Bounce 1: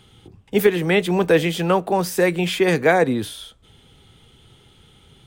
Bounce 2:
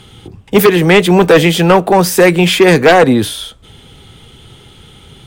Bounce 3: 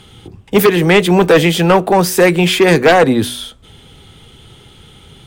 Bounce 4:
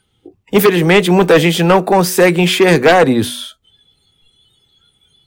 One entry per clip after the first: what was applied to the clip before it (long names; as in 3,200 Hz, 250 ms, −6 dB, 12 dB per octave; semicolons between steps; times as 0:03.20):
sine wavefolder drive 6 dB, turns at −4 dBFS; level +2.5 dB
hum removal 122.4 Hz, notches 3; level −2 dB
bit reduction 10 bits; noise reduction from a noise print of the clip's start 22 dB